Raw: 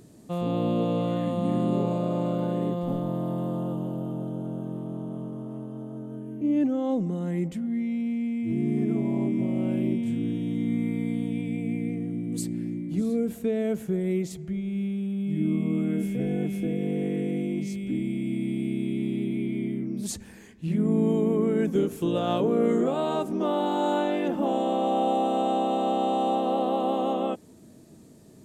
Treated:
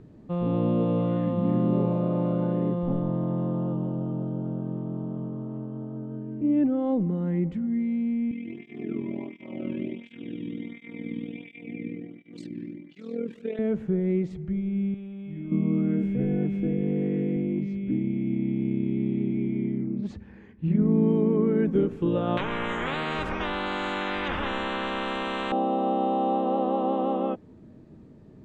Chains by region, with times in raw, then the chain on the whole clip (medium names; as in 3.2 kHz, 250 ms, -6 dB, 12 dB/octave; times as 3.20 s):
8.31–13.59 s: frequency weighting D + AM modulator 41 Hz, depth 55% + cancelling through-zero flanger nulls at 1.4 Hz, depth 1.5 ms
14.94–15.52 s: peaking EQ 220 Hz -12.5 dB 1 oct + band-stop 430 Hz, Q 5.9 + compression 2:1, threshold -36 dBFS
17.36–20.82 s: high-pass 49 Hz + transient shaper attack +2 dB, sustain -3 dB + distance through air 94 m
22.37–25.52 s: tone controls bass -5 dB, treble -11 dB + spectrum-flattening compressor 10:1
whole clip: low-pass 2.1 kHz 12 dB/octave; bass shelf 94 Hz +10.5 dB; band-stop 680 Hz, Q 12